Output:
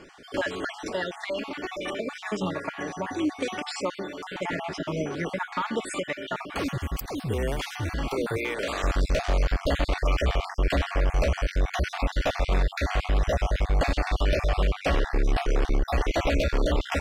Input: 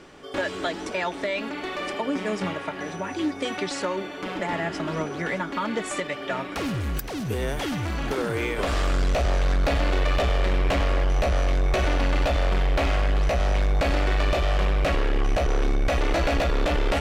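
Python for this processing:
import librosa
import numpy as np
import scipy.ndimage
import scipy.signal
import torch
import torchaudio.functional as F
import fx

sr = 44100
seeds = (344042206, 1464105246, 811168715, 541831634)

y = fx.spec_dropout(x, sr, seeds[0], share_pct=38)
y = fx.highpass(y, sr, hz=420.0, slope=6, at=(8.37, 8.84))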